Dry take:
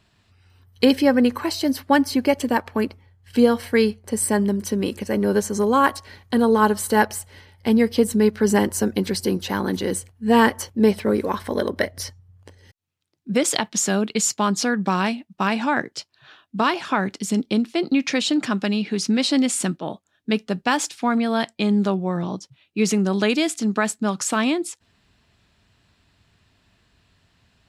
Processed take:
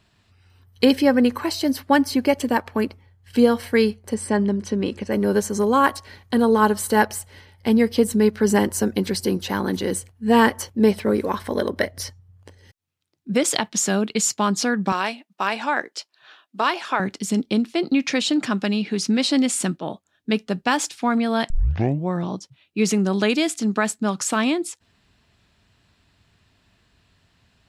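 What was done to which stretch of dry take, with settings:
0:04.14–0:05.12: high-frequency loss of the air 84 metres
0:14.92–0:17.00: high-pass filter 420 Hz
0:21.50: tape start 0.57 s

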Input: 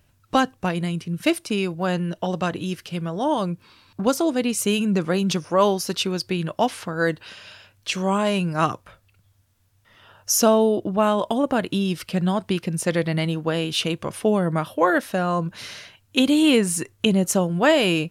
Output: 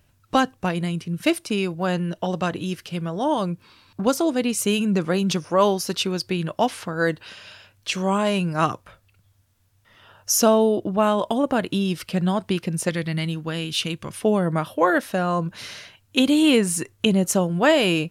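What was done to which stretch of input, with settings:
0:12.89–0:14.22: parametric band 610 Hz −9 dB 1.9 octaves

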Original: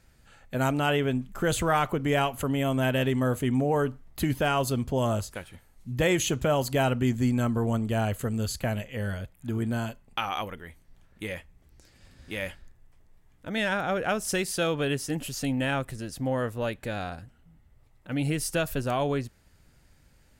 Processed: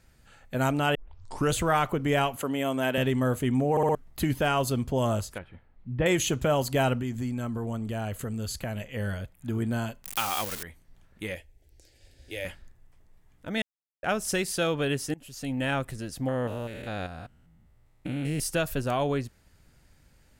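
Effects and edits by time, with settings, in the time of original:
0:00.95: tape start 0.58 s
0:02.36–0:02.98: high-pass filter 230 Hz
0:03.71: stutter in place 0.06 s, 4 plays
0:05.38–0:06.06: high-frequency loss of the air 460 metres
0:07.00–0:08.81: downward compressor 2.5 to 1, threshold −30 dBFS
0:10.04–0:10.63: spike at every zero crossing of −21.5 dBFS
0:11.35–0:12.45: phaser with its sweep stopped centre 470 Hz, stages 4
0:13.62–0:14.03: silence
0:15.14–0:15.71: fade in, from −23.5 dB
0:16.28–0:18.40: spectrum averaged block by block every 200 ms

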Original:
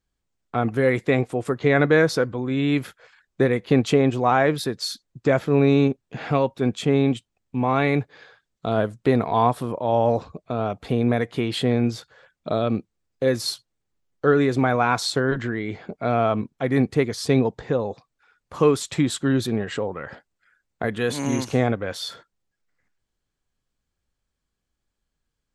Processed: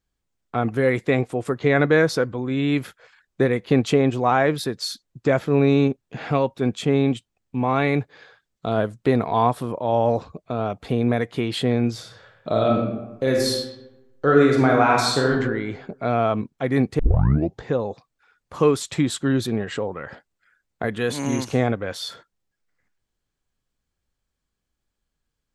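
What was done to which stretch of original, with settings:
0:11.94–0:15.32: thrown reverb, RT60 1 s, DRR −0.5 dB
0:16.99: tape start 0.62 s

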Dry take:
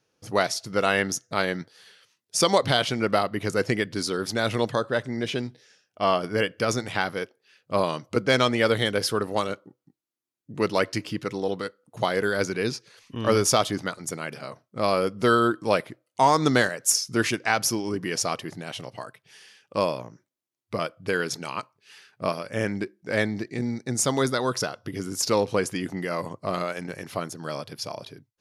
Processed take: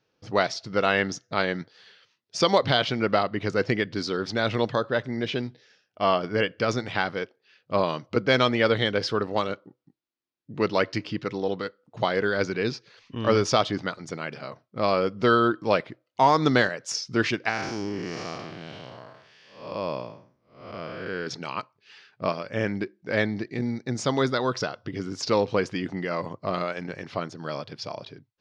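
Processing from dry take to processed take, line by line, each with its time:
0:17.49–0:21.27: spectrum smeared in time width 281 ms
whole clip: low-pass filter 5,100 Hz 24 dB per octave

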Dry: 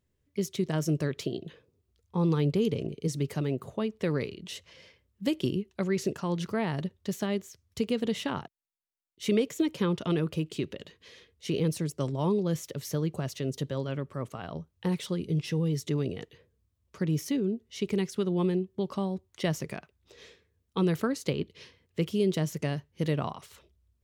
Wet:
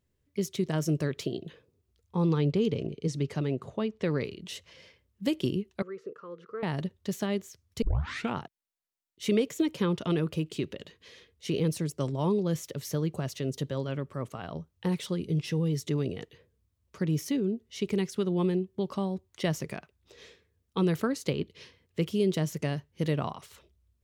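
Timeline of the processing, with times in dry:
0:02.25–0:04.25: low-pass filter 6,500 Hz
0:05.82–0:06.63: pair of resonant band-passes 770 Hz, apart 1.4 octaves
0:07.82: tape start 0.54 s

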